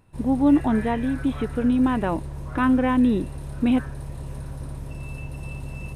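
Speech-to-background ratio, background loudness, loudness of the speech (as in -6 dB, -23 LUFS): 12.5 dB, -35.0 LUFS, -22.5 LUFS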